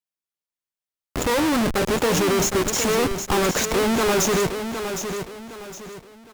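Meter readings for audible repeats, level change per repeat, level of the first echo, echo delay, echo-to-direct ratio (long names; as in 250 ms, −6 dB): 3, −9.5 dB, −8.0 dB, 762 ms, −7.5 dB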